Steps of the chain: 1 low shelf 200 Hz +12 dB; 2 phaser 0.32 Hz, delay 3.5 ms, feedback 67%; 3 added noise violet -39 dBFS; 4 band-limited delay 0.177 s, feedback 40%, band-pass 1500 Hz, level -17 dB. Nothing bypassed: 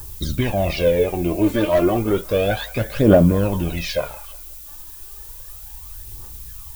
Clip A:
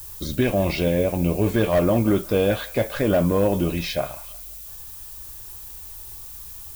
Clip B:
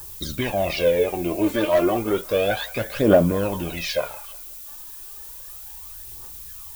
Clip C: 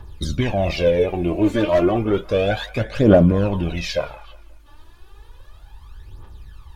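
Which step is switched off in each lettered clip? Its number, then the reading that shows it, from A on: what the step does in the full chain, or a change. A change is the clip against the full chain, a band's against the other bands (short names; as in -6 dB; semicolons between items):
2, 8 kHz band +2.0 dB; 1, 125 Hz band -8.0 dB; 3, momentary loudness spread change -9 LU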